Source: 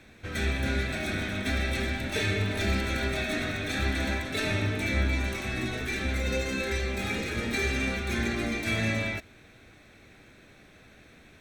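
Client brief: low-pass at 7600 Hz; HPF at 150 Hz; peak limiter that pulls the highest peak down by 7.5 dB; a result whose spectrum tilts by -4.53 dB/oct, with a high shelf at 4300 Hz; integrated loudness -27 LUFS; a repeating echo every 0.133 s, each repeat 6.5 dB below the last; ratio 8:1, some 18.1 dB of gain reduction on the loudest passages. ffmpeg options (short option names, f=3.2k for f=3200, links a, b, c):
-af "highpass=150,lowpass=7.6k,highshelf=f=4.3k:g=-4,acompressor=threshold=-46dB:ratio=8,alimiter=level_in=18dB:limit=-24dB:level=0:latency=1,volume=-18dB,aecho=1:1:133|266|399|532|665|798:0.473|0.222|0.105|0.0491|0.0231|0.0109,volume=22.5dB"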